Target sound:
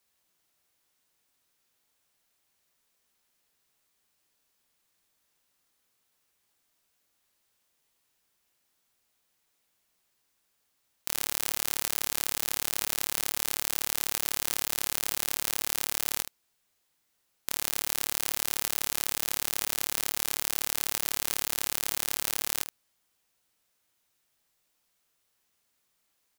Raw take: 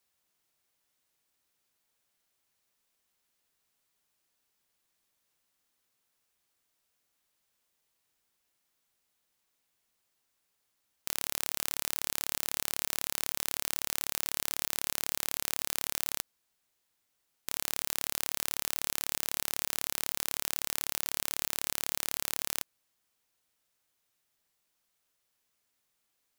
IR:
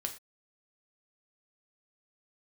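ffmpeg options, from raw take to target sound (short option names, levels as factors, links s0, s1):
-af "acontrast=78,aecho=1:1:22|75:0.335|0.531,aeval=exprs='0.794*(cos(1*acos(clip(val(0)/0.794,-1,1)))-cos(1*PI/2))+0.112*(cos(3*acos(clip(val(0)/0.794,-1,1)))-cos(3*PI/2))':c=same"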